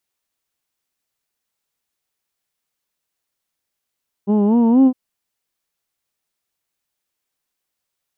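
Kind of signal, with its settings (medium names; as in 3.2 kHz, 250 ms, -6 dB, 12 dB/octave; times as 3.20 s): formant vowel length 0.66 s, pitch 196 Hz, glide +5.5 st, vibrato 4.2 Hz, F1 310 Hz, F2 910 Hz, F3 2.9 kHz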